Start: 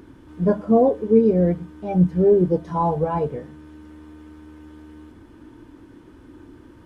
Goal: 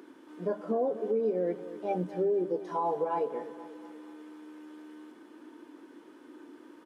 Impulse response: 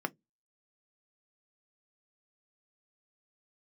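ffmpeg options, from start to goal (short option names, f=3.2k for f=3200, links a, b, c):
-af "highpass=f=280:w=0.5412,highpass=f=280:w=1.3066,alimiter=limit=-19dB:level=0:latency=1:release=199,aecho=1:1:242|484|726|968|1210:0.2|0.102|0.0519|0.0265|0.0135,volume=-3dB"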